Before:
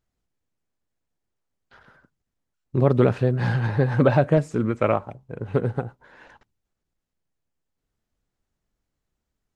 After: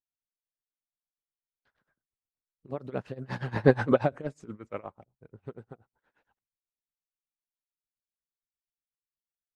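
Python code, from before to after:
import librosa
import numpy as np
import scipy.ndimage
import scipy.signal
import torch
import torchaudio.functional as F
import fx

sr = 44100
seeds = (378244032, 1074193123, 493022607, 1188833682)

y = fx.doppler_pass(x, sr, speed_mps=12, closest_m=1.6, pass_at_s=3.69)
y = y * (1.0 - 0.86 / 2.0 + 0.86 / 2.0 * np.cos(2.0 * np.pi * 8.4 * (np.arange(len(y)) / sr)))
y = fx.hpss(y, sr, part='harmonic', gain_db=-9)
y = y * 10.0 ** (5.5 / 20.0)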